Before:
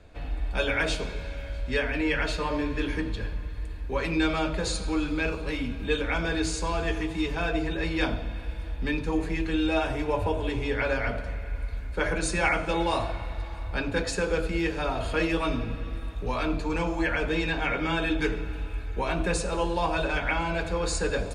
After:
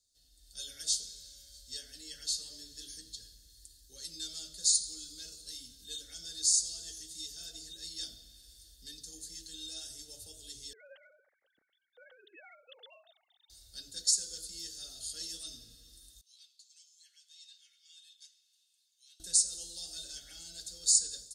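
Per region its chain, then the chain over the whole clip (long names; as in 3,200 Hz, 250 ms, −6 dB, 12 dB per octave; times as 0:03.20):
0:10.73–0:13.50: three sine waves on the formant tracks + parametric band 1,000 Hz +9 dB 0.5 octaves
0:16.21–0:19.20: resonant band-pass 2,500 Hz, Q 2.3 + first difference
whole clip: inverse Chebyshev high-pass filter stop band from 2,600 Hz, stop band 40 dB; automatic gain control gain up to 10 dB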